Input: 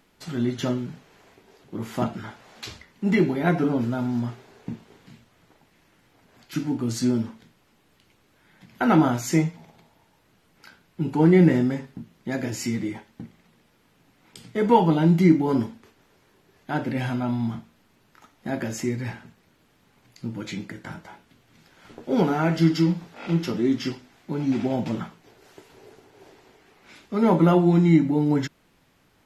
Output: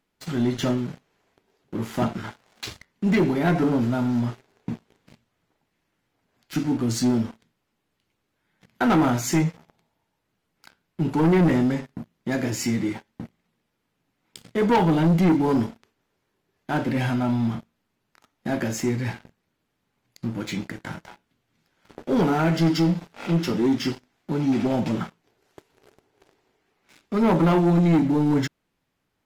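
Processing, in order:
leveller curve on the samples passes 3
level −8 dB

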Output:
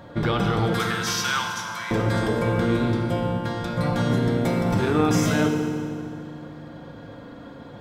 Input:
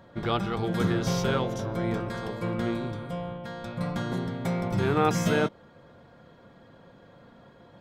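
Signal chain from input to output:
0:00.73–0:01.91: inverse Chebyshev high-pass filter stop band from 230 Hz, stop band 70 dB
brickwall limiter −23 dBFS, peak gain reduction 12 dB
feedback delay network reverb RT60 2.2 s, low-frequency decay 1.55×, high-frequency decay 0.85×, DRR 2.5 dB
level +8.5 dB

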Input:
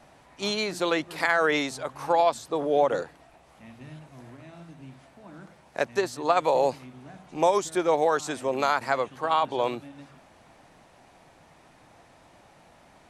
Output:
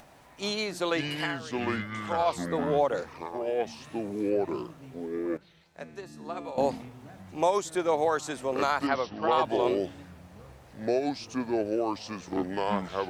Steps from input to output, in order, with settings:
0:01.10–0:02.31: duck −19.5 dB, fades 0.30 s
0:03.70–0:04.30: spectral tilt +2.5 dB per octave
bit reduction 11 bits
pitch vibrato 9 Hz 5.9 cents
delay with pitch and tempo change per echo 378 ms, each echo −6 semitones, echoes 2
upward compression, threshold −46 dBFS
0:05.37–0:06.58: tuned comb filter 170 Hz, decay 1.7 s, mix 80%
0:08.87–0:09.33: linear-phase brick-wall low-pass 6,000 Hz
level −3 dB

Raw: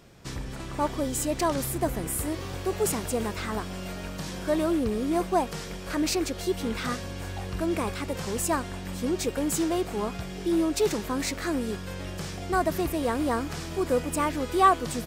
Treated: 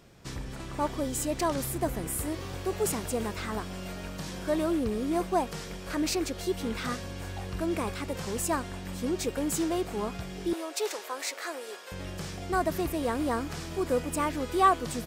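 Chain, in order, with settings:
0:10.53–0:11.92: high-pass filter 470 Hz 24 dB per octave
level −2.5 dB

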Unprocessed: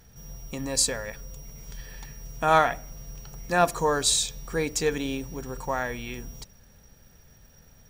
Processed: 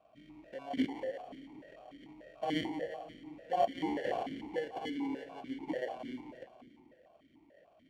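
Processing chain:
in parallel at −2 dB: downward compressor, threshold −37 dBFS, peak gain reduction 21 dB
on the sum: decimation without filtering 35×
echo with a time of its own for lows and highs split 430 Hz, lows 247 ms, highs 177 ms, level −8.5 dB
formant filter that steps through the vowels 6.8 Hz
level −1.5 dB

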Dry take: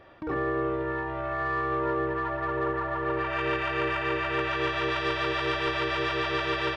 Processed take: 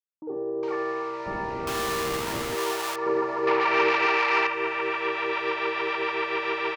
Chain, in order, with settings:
0:03.06–0:04.06: leveller curve on the samples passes 3
bit reduction 7 bits
loudspeaker in its box 350–4,700 Hz, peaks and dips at 440 Hz +7 dB, 620 Hz −6 dB, 880 Hz +10 dB, 1,600 Hz −5 dB, 2,300 Hz +6 dB, 3,400 Hz −6 dB
0:01.26–0:02.55: comparator with hysteresis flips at −34.5 dBFS
multiband delay without the direct sound lows, highs 410 ms, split 630 Hz

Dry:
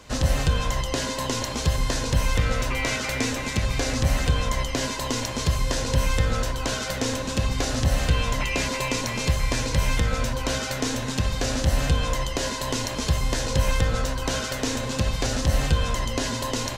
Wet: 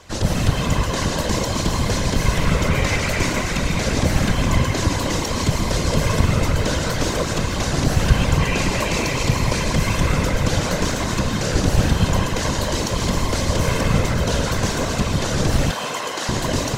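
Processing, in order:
convolution reverb RT60 5.2 s, pre-delay 98 ms, DRR −0.5 dB
random phases in short frames
0:15.71–0:16.29: high-pass filter 490 Hz 12 dB per octave
level +1.5 dB

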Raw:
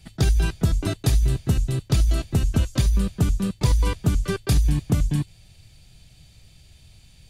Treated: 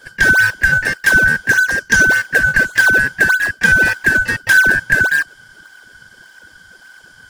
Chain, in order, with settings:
band-splitting scrambler in four parts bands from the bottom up 2143
0:01.50–0:02.05: parametric band 6,100 Hz +14 dB 0.24 octaves
in parallel at −11 dB: sample-and-hold swept by an LFO 36×, swing 160% 1.7 Hz
on the sum: level +6 dB

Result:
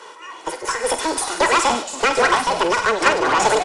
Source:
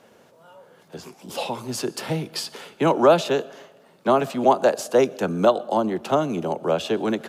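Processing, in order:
high-pass filter 92 Hz 24 dB per octave
comb filter 4.1 ms, depth 74%
in parallel at +2 dB: downward compressor, threshold −28 dBFS, peak gain reduction 17.5 dB
on the sum: soft clipping −14 dBFS, distortion −10 dB
delay with pitch and tempo change per echo 601 ms, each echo −5 semitones, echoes 3, each echo −6 dB
on a send: feedback echo with a high-pass in the loop 97 ms, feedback 69%, high-pass 420 Hz, level −8.5 dB
on the sum: harmonic generator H 6 −23 dB, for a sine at −7.5 dBFS
wrong playback speed 7.5 ips tape played at 15 ips
downsampling to 22,050 Hz
amplitude modulation by smooth noise, depth 55%
level +5 dB

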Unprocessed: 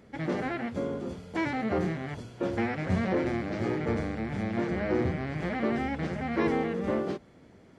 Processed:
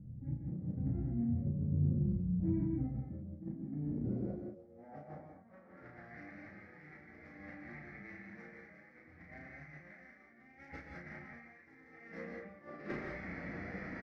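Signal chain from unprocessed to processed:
thirty-one-band graphic EQ 100 Hz −8 dB, 400 Hz −8 dB, 1,000 Hz −5 dB, 2,000 Hz +6 dB, 3,150 Hz −12 dB
time stretch by phase vocoder 1.8×
low-pass filter sweep 120 Hz → 2,000 Hz, 0:02.85–0:06.21
far-end echo of a speakerphone 80 ms, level −19 dB
compressor whose output falls as the input rises −45 dBFS, ratio −0.5
convolution reverb, pre-delay 3 ms, DRR 2.5 dB
flanger 1.2 Hz, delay 9.5 ms, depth 5.2 ms, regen −63%
parametric band 5,300 Hz +12.5 dB 0.58 octaves
double-tracking delay 34 ms −3 dB
level +3.5 dB

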